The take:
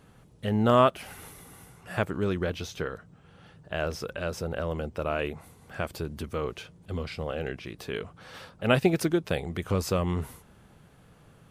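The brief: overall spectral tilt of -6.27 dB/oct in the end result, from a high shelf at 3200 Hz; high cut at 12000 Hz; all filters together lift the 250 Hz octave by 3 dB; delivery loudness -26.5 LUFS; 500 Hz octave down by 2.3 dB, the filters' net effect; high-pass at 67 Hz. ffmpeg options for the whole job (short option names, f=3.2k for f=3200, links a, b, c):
-af "highpass=67,lowpass=12k,equalizer=f=250:t=o:g=5.5,equalizer=f=500:t=o:g=-4.5,highshelf=f=3.2k:g=-6.5,volume=3dB"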